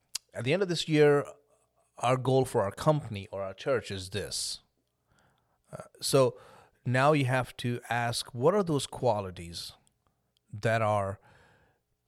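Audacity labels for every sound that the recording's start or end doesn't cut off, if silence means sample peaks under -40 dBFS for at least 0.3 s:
1.990000	4.560000	sound
5.730000	6.300000	sound
6.860000	9.700000	sound
10.530000	11.140000	sound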